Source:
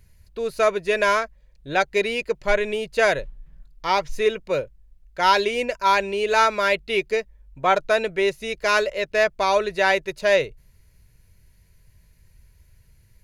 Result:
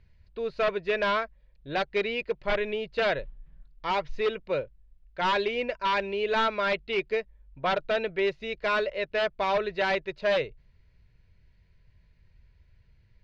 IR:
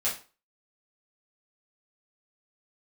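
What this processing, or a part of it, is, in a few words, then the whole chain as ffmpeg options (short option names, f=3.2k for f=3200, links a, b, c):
synthesiser wavefolder: -af "aeval=exprs='0.2*(abs(mod(val(0)/0.2+3,4)-2)-1)':c=same,lowpass=f=4.1k:w=0.5412,lowpass=f=4.1k:w=1.3066,volume=-5dB"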